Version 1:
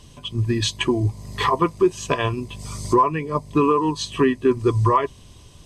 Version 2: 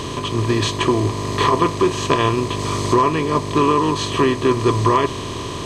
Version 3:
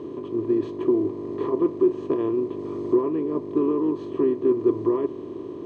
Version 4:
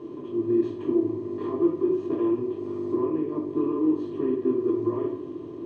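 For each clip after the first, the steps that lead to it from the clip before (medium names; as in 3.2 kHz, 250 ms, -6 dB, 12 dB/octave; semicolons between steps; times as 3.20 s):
spectral levelling over time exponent 0.4; trim -2.5 dB
band-pass filter 340 Hz, Q 3.4
reverberation RT60 0.55 s, pre-delay 3 ms, DRR -3 dB; trim -8 dB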